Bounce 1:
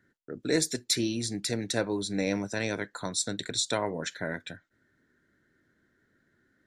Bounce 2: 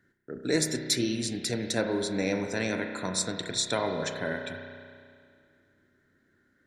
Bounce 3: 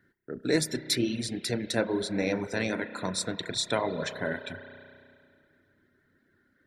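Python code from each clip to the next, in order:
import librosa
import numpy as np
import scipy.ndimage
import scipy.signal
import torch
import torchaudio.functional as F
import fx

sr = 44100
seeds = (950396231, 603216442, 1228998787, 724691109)

y1 = fx.rev_spring(x, sr, rt60_s=2.2, pass_ms=(32,), chirp_ms=75, drr_db=4.0)
y2 = fx.dereverb_blind(y1, sr, rt60_s=0.62)
y2 = fx.peak_eq(y2, sr, hz=6800.0, db=-7.5, octaves=0.65)
y2 = y2 * 10.0 ** (1.5 / 20.0)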